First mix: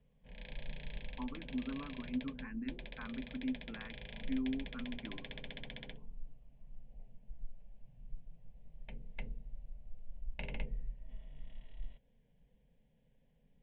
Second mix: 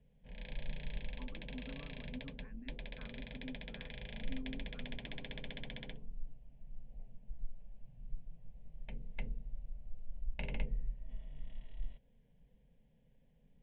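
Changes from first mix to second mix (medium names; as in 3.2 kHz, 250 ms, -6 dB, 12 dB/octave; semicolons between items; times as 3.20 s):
speech -12.0 dB; master: add bass shelf 340 Hz +3 dB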